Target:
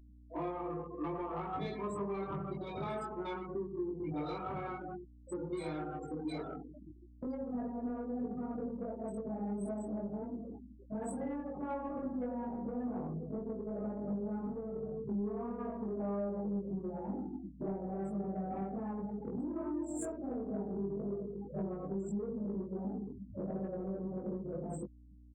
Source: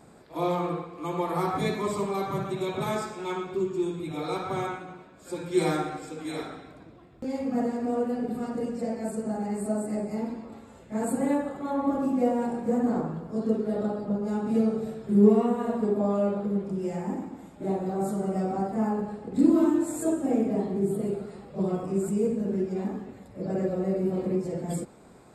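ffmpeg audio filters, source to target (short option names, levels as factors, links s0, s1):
-filter_complex "[0:a]afftfilt=real='re*gte(hypot(re,im),0.0251)':imag='im*gte(hypot(re,im),0.0251)':win_size=1024:overlap=0.75,acrossover=split=150|500|3000[s0][s1][s2][s3];[s1]alimiter=limit=0.0841:level=0:latency=1:release=28[s4];[s0][s4][s2][s3]amix=inputs=4:normalize=0,acompressor=threshold=0.0158:ratio=10,asoftclip=type=tanh:threshold=0.0237,aeval=exprs='val(0)+0.00126*(sin(2*PI*60*n/s)+sin(2*PI*2*60*n/s)/2+sin(2*PI*3*60*n/s)/3+sin(2*PI*4*60*n/s)/4+sin(2*PI*5*60*n/s)/5)':c=same,asplit=2[s5][s6];[s6]adelay=20,volume=0.75[s7];[s5][s7]amix=inputs=2:normalize=0"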